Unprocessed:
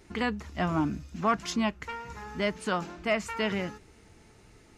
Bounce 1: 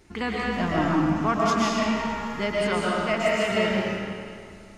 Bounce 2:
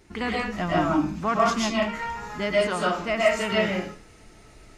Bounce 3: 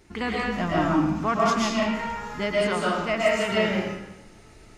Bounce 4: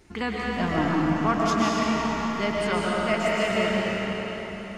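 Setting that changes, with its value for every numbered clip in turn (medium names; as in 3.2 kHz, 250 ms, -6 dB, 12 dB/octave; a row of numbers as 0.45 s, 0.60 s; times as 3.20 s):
algorithmic reverb, RT60: 2.2 s, 0.42 s, 1 s, 4.6 s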